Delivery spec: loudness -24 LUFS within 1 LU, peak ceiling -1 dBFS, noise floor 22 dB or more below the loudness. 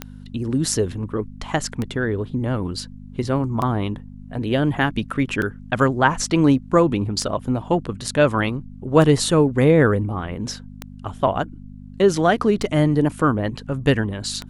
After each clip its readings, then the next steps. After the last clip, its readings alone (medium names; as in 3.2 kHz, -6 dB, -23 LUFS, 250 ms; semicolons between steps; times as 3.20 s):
clicks found 9; hum 50 Hz; highest harmonic 250 Hz; hum level -37 dBFS; loudness -21.0 LUFS; peak level -1.5 dBFS; loudness target -24.0 LUFS
-> de-click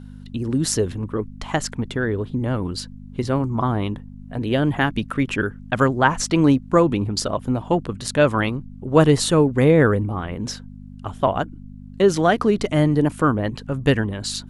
clicks found 0; hum 50 Hz; highest harmonic 200 Hz; hum level -38 dBFS
-> de-hum 50 Hz, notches 4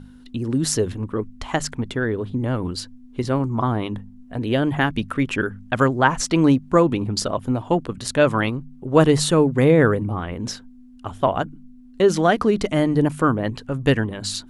hum not found; loudness -21.0 LUFS; peak level -1.5 dBFS; loudness target -24.0 LUFS
-> trim -3 dB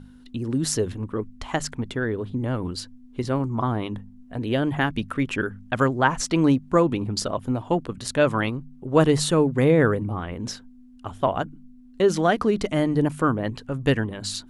loudness -24.0 LUFS; peak level -4.5 dBFS; noise floor -48 dBFS